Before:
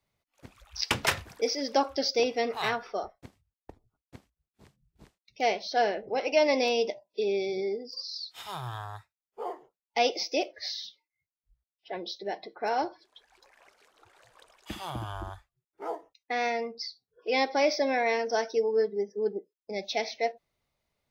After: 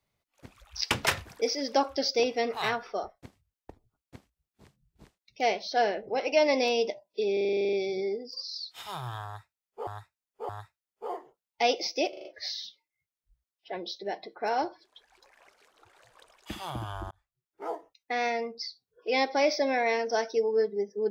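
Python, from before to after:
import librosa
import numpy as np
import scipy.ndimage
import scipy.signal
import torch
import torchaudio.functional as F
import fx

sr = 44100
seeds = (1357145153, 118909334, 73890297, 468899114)

y = fx.edit(x, sr, fx.stutter(start_s=7.33, slice_s=0.04, count=11),
    fx.repeat(start_s=8.85, length_s=0.62, count=3),
    fx.stutter(start_s=10.45, slice_s=0.04, count=5),
    fx.fade_in_span(start_s=15.31, length_s=0.54), tone=tone)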